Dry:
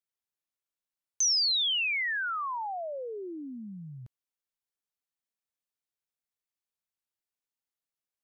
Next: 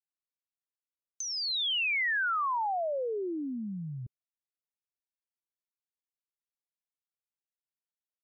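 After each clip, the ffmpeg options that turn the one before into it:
ffmpeg -i in.wav -af "afftdn=noise_reduction=22:noise_floor=-51,acompressor=threshold=-32dB:ratio=6,lowpass=3900,volume=5dB" out.wav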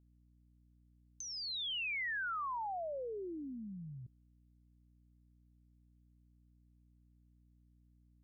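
ffmpeg -i in.wav -af "aeval=exprs='val(0)+0.00141*(sin(2*PI*60*n/s)+sin(2*PI*2*60*n/s)/2+sin(2*PI*3*60*n/s)/3+sin(2*PI*4*60*n/s)/4+sin(2*PI*5*60*n/s)/5)':channel_layout=same,volume=-9dB" out.wav

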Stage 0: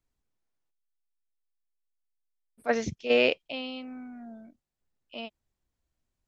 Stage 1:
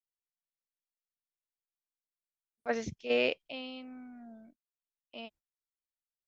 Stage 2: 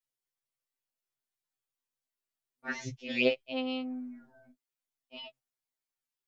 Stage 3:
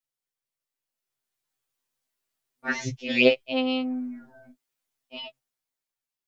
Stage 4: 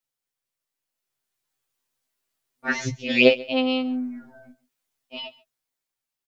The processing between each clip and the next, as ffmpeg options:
ffmpeg -i in.wav -af "agate=range=-27dB:threshold=-53dB:ratio=16:detection=peak,volume=-6dB" out.wav
ffmpeg -i in.wav -af "afftfilt=real='re*2.45*eq(mod(b,6),0)':imag='im*2.45*eq(mod(b,6),0)':win_size=2048:overlap=0.75,volume=4.5dB" out.wav
ffmpeg -i in.wav -af "dynaudnorm=framelen=350:gausssize=7:maxgain=9dB" out.wav
ffmpeg -i in.wav -af "aecho=1:1:138:0.0841,volume=3dB" out.wav

